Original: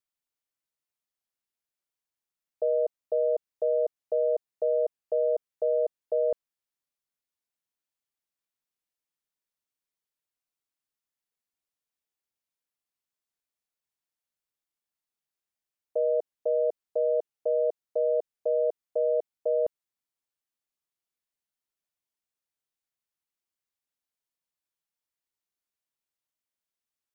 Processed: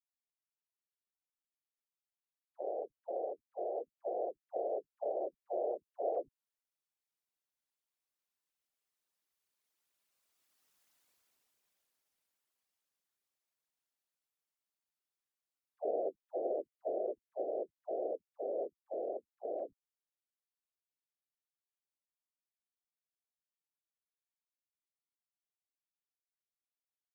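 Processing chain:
source passing by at 0:10.88, 10 m/s, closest 4.2 metres
all-pass dispersion lows, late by 140 ms, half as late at 510 Hz
random phases in short frames
bass and treble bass −5 dB, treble 0 dB
in parallel at −2 dB: downward compressor, threshold −56 dBFS, peak gain reduction 13 dB
on the sum: level +10.5 dB

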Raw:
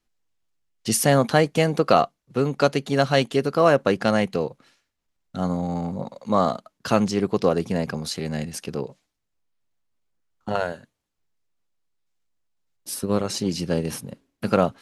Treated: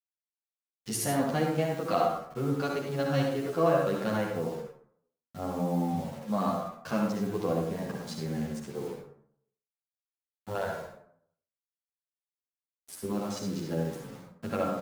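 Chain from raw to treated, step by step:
adaptive Wiener filter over 15 samples
0:13.21–0:14.10: high-pass filter 120 Hz 12 dB per octave
mains-hum notches 60/120/180/240/300/360/420/480/540/600 Hz
harmonic and percussive parts rebalanced percussive −7 dB
downward compressor 1.5 to 1, threshold −28 dBFS, peak gain reduction 5.5 dB
low-shelf EQ 410 Hz −2.5 dB
far-end echo of a speakerphone 140 ms, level −24 dB
bit reduction 8 bits
convolution reverb RT60 0.65 s, pre-delay 53 ms, DRR 0.5 dB
barber-pole flanger 10.4 ms −1.3 Hz

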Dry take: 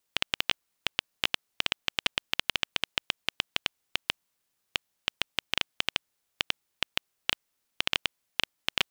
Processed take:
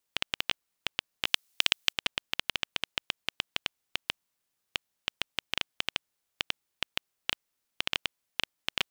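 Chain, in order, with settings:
0:01.27–0:01.93: high-shelf EQ 2,300 Hz +12 dB
level −3 dB

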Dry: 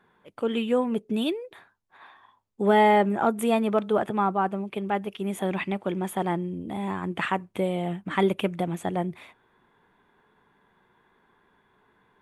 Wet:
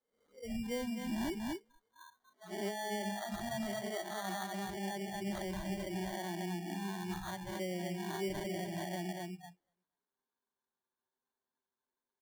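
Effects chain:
peak hold with a rise ahead of every peak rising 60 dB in 0.71 s
high-shelf EQ 7,300 Hz +10 dB
on a send: repeating echo 237 ms, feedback 29%, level −6 dB
on the sum: downward compressor 1.5 to 1, threshold −38 dBFS, peak gain reduction 9 dB
brickwall limiter −23.5 dBFS, peak gain reduction 10 dB
Butterworth high-pass 170 Hz 96 dB per octave
flanger swept by the level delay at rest 9.4 ms, full sweep at −32.5 dBFS
parametric band 2,400 Hz +4.5 dB 0.28 octaves
decimation without filtering 17×
noise reduction from a noise print of the clip's start 28 dB
level −3.5 dB

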